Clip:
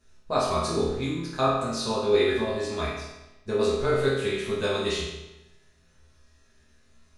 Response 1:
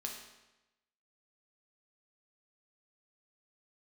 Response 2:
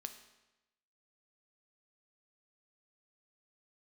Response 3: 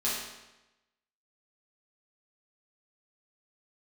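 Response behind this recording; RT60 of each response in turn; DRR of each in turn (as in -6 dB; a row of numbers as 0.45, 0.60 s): 3; 1.0, 1.0, 1.0 s; 0.0, 7.0, -9.5 dB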